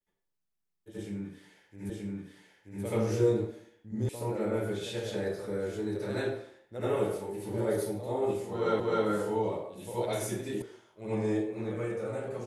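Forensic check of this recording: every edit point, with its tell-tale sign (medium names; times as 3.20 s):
1.90 s: repeat of the last 0.93 s
4.09 s: sound stops dead
8.80 s: repeat of the last 0.26 s
10.62 s: sound stops dead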